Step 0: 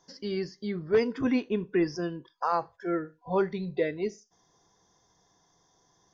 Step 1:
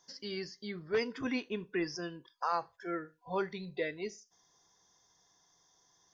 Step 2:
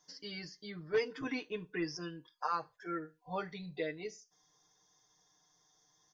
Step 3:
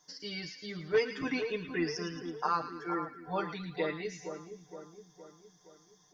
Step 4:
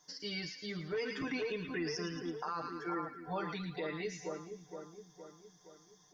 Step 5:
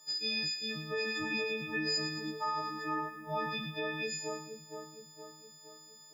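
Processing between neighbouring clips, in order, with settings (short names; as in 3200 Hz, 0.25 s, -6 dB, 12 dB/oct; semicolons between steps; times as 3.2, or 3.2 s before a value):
tilt shelf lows -5.5 dB, about 1100 Hz; gain -4.5 dB
comb 6.6 ms, depth 86%; gain -4.5 dB
split-band echo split 1300 Hz, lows 0.466 s, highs 0.111 s, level -8.5 dB; gain +4 dB
limiter -29 dBFS, peak gain reduction 12 dB
frequency quantiser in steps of 6 st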